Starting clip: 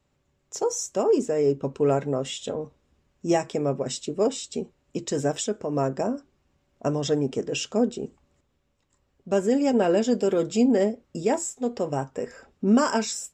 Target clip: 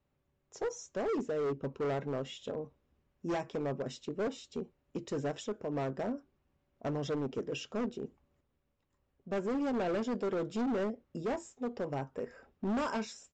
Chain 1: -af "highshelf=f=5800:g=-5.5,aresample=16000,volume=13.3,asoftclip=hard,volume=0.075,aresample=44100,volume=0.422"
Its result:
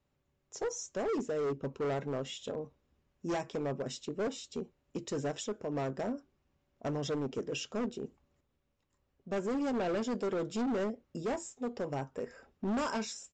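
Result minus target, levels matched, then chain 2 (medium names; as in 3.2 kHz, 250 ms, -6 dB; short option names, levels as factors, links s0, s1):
8 kHz band +6.0 dB
-af "highshelf=f=5800:g=-17,aresample=16000,volume=13.3,asoftclip=hard,volume=0.075,aresample=44100,volume=0.422"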